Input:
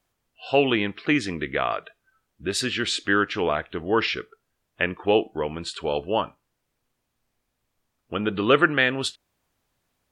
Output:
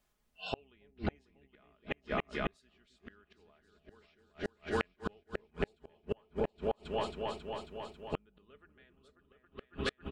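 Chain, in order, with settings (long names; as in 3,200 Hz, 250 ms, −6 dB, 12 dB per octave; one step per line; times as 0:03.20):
sub-octave generator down 2 octaves, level 0 dB
comb filter 4.8 ms, depth 52%
on a send: echo whose low-pass opens from repeat to repeat 272 ms, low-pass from 400 Hz, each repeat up 2 octaves, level −3 dB
on the sum: gate with flip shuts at −16 dBFS, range −40 dB
level −4.5 dB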